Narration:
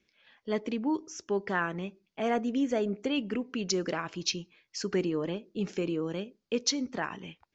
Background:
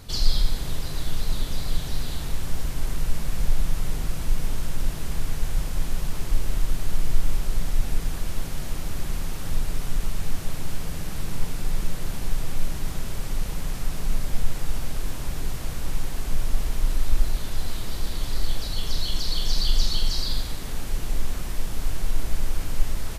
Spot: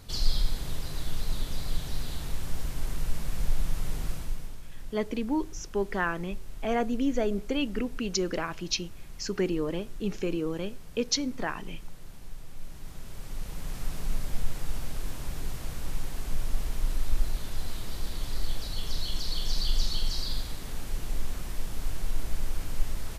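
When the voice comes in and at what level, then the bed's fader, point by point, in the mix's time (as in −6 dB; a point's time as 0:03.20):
4.45 s, +1.0 dB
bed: 0:04.11 −5 dB
0:04.61 −17 dB
0:12.49 −17 dB
0:13.84 −5.5 dB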